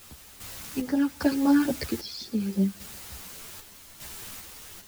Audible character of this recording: phasing stages 12, 3.6 Hz, lowest notch 600–3200 Hz; a quantiser's noise floor 8-bit, dither triangular; random-step tremolo 2.5 Hz, depth 70%; a shimmering, thickened sound

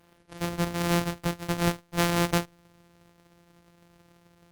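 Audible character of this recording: a buzz of ramps at a fixed pitch in blocks of 256 samples; Opus

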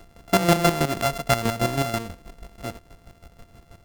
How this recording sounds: a buzz of ramps at a fixed pitch in blocks of 64 samples; chopped level 6.2 Hz, depth 65%, duty 30%

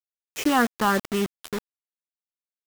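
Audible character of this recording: phasing stages 6, 3.2 Hz, lowest notch 540–1100 Hz; a quantiser's noise floor 6-bit, dither none

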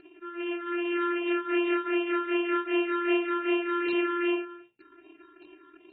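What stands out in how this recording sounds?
a buzz of ramps at a fixed pitch in blocks of 32 samples; phasing stages 6, 2.6 Hz, lowest notch 680–1400 Hz; AAC

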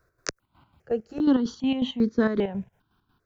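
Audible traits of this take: chopped level 5.5 Hz, depth 60%, duty 50%; notches that jump at a steady rate 2.5 Hz 840–2900 Hz

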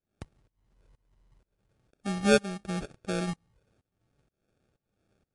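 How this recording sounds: phasing stages 6, 1.4 Hz, lowest notch 620–2700 Hz; aliases and images of a low sample rate 1 kHz, jitter 0%; tremolo saw up 2.1 Hz, depth 95%; MP3

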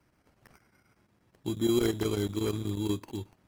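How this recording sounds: aliases and images of a low sample rate 3.6 kHz, jitter 0%; chopped level 8.3 Hz, depth 65%, duty 85%; AAC

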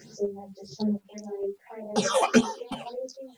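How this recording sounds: phasing stages 6, 1.7 Hz, lowest notch 360–2500 Hz; chopped level 1.4 Hz, depth 60%, duty 35%; a quantiser's noise floor 12-bit, dither none; a shimmering, thickened sound

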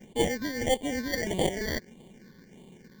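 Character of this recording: aliases and images of a low sample rate 1.3 kHz, jitter 0%; phasing stages 6, 1.6 Hz, lowest notch 720–1500 Hz

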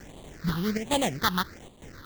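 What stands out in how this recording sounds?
a quantiser's noise floor 8-bit, dither triangular; chopped level 1.1 Hz, depth 65%, duty 85%; aliases and images of a low sample rate 2.6 kHz, jitter 20%; phasing stages 6, 1.3 Hz, lowest notch 600–1500 Hz

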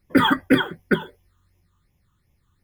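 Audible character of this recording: phasing stages 8, 2.7 Hz, lowest notch 640–1300 Hz

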